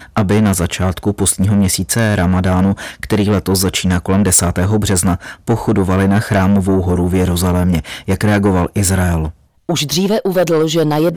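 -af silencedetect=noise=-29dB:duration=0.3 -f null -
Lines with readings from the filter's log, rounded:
silence_start: 9.31
silence_end: 9.69 | silence_duration: 0.38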